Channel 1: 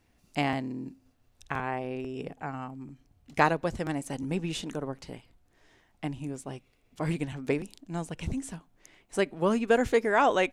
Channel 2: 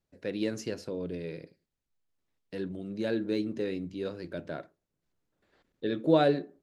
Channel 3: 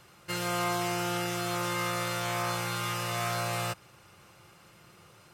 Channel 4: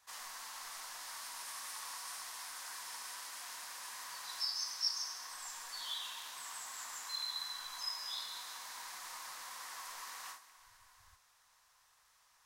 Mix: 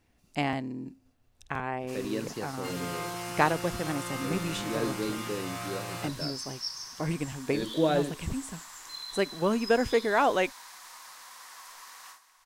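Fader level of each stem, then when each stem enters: −1.0, −2.5, −6.5, −0.5 decibels; 0.00, 1.70, 2.35, 1.80 seconds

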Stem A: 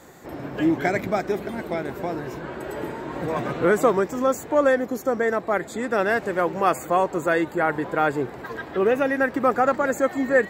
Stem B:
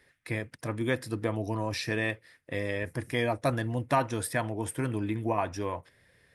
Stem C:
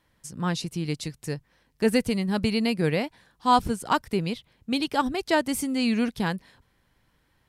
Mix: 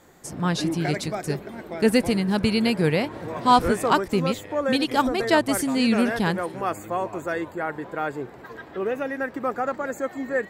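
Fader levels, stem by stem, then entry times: −6.5, −11.0, +3.0 decibels; 0.00, 1.75, 0.00 seconds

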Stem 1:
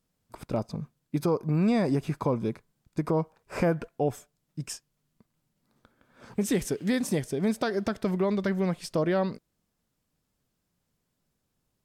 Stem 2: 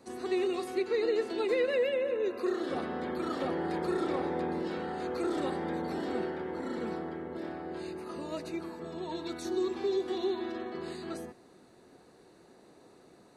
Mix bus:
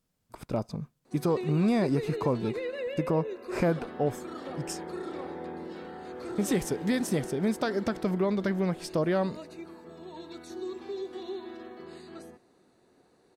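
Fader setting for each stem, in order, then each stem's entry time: −1.0, −6.0 decibels; 0.00, 1.05 seconds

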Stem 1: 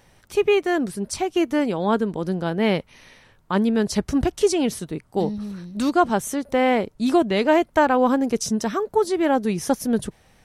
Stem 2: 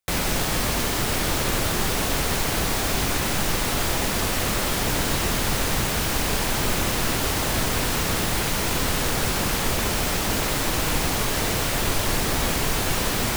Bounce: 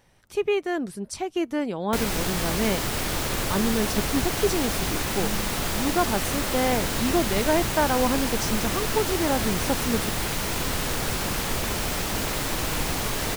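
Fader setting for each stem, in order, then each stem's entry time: −5.5, −3.5 decibels; 0.00, 1.85 seconds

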